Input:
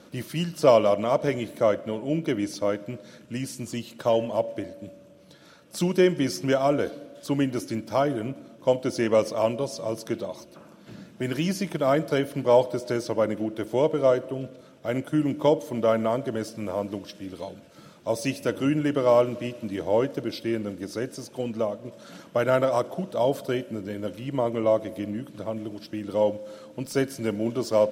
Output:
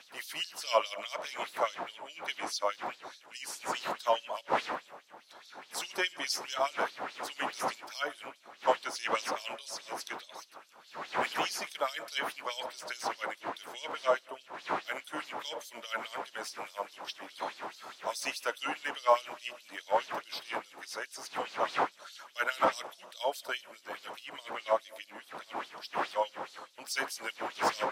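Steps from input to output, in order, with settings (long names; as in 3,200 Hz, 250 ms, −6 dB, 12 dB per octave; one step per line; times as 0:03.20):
wind on the microphone 260 Hz −22 dBFS
auto-filter high-pass sine 4.8 Hz 850–4,500 Hz
0:17.07–0:18.22: multiband upward and downward compressor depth 40%
level −3 dB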